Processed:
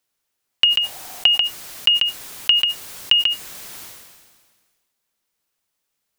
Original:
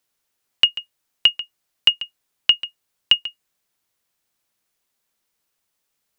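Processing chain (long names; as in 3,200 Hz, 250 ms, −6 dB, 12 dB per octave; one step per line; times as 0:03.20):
0:00.78–0:01.41: parametric band 740 Hz +13.5 dB 0.42 octaves
level that may fall only so fast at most 36 dB per second
level −1 dB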